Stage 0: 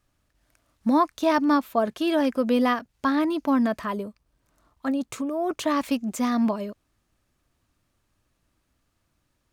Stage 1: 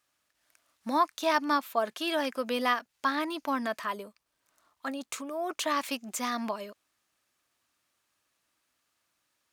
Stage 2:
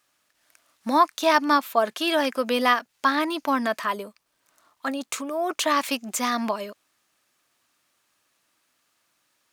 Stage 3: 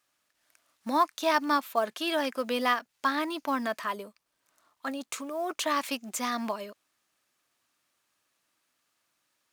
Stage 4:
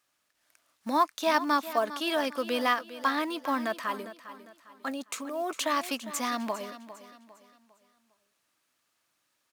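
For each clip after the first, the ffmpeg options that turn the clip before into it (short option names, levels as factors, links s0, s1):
-af "highpass=f=1300:p=1,volume=1.19"
-af "equalizer=f=66:t=o:w=0.61:g=-14.5,volume=2.24"
-af "acrusher=bits=7:mode=log:mix=0:aa=0.000001,volume=0.501"
-af "aecho=1:1:403|806|1209|1612:0.2|0.0758|0.0288|0.0109"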